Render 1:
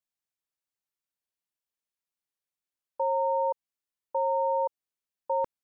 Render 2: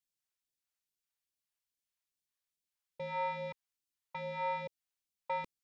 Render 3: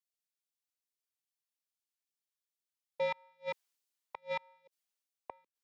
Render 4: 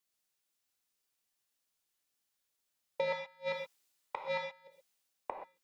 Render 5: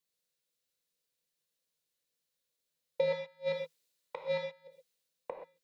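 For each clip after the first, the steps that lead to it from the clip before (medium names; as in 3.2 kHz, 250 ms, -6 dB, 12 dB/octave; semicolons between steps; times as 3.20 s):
saturation -27 dBFS, distortion -13 dB; phase shifter stages 2, 2.4 Hz, lowest notch 240–1100 Hz
Chebyshev high-pass 380 Hz, order 2; inverted gate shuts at -33 dBFS, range -35 dB; three bands expanded up and down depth 40%; trim +7 dB
compression 4:1, threshold -39 dBFS, peak gain reduction 9 dB; on a send at -2 dB: reverberation, pre-delay 3 ms; on the sum: trim +7 dB
graphic EQ with 31 bands 160 Hz +10 dB, 500 Hz +12 dB, 800 Hz -7 dB, 1.25 kHz -4 dB, 4 kHz +5 dB; trim -3 dB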